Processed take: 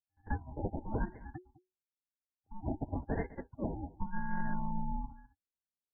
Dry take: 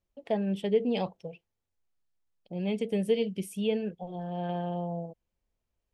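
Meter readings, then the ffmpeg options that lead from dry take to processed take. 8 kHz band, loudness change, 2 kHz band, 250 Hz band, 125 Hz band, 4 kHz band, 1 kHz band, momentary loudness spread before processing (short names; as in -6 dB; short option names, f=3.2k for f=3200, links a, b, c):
under -25 dB, -8.5 dB, -0.5 dB, -8.0 dB, -3.0 dB, under -40 dB, -2.0 dB, 11 LU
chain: -filter_complex "[0:a]afftdn=nr=35:nf=-40,afftfilt=real='re*between(b*sr/4096,620,5300)':imag='im*between(b*sr/4096,620,5300)':win_size=4096:overlap=0.75,equalizer=f=1.2k:t=o:w=2.5:g=-4.5,aecho=1:1:5.3:0.64,acompressor=threshold=-46dB:ratio=4,aeval=exprs='val(0)*sin(2*PI*550*n/s)':c=same,asplit=2[a][b];[b]highpass=f=720:p=1,volume=13dB,asoftclip=type=tanh:threshold=-37.5dB[c];[a][c]amix=inputs=2:normalize=0,lowpass=f=4k:p=1,volume=-6dB,acrusher=samples=27:mix=1:aa=0.000001,afreqshift=-370,asplit=2[d][e];[e]adelay=204.1,volume=-18dB,highshelf=f=4k:g=-4.59[f];[d][f]amix=inputs=2:normalize=0,afftfilt=real='re*lt(b*sr/1024,920*pow(2200/920,0.5+0.5*sin(2*PI*0.96*pts/sr)))':imag='im*lt(b*sr/1024,920*pow(2200/920,0.5+0.5*sin(2*PI*0.96*pts/sr)))':win_size=1024:overlap=0.75,volume=15.5dB"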